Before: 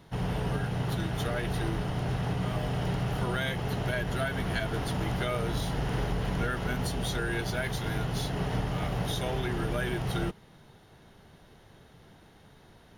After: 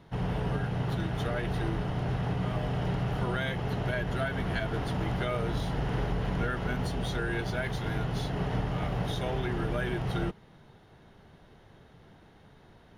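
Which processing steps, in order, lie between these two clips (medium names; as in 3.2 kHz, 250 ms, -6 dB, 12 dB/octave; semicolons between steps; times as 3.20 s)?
treble shelf 5.4 kHz -12 dB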